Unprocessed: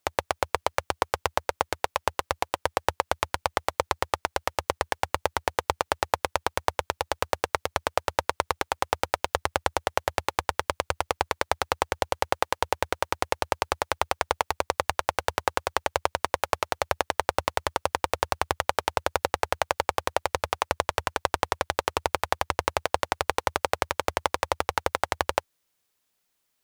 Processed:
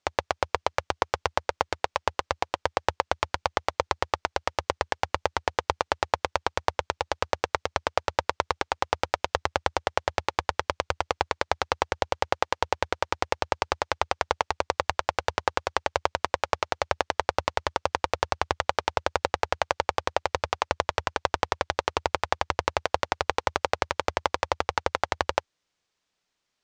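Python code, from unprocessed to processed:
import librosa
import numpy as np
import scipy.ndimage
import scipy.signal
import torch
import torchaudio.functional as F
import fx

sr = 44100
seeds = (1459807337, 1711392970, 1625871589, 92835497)

y = scipy.signal.sosfilt(scipy.signal.butter(4, 6600.0, 'lowpass', fs=sr, output='sos'), x)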